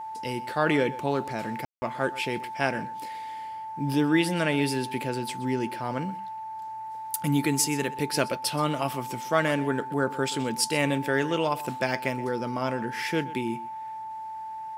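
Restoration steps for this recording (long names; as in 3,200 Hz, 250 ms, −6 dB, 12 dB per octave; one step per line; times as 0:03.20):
notch filter 880 Hz, Q 30
ambience match 0:01.65–0:01.82
echo removal 126 ms −18 dB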